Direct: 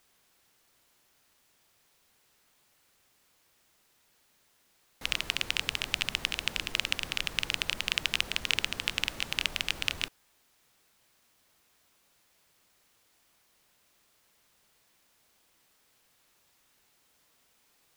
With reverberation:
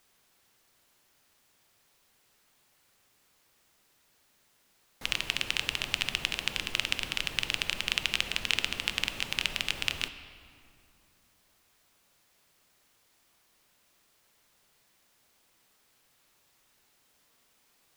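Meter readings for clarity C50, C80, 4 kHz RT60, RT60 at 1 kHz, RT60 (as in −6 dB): 11.0 dB, 12.0 dB, 1.5 s, 2.5 s, 2.5 s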